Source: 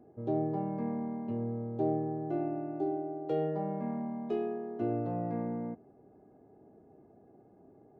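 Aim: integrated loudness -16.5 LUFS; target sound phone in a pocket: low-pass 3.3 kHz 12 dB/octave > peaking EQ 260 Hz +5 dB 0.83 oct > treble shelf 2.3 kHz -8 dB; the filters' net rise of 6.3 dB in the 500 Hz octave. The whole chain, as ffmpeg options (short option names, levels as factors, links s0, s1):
-af "lowpass=3300,equalizer=f=260:t=o:w=0.83:g=5,equalizer=f=500:t=o:g=7,highshelf=f=2300:g=-8,volume=4.47"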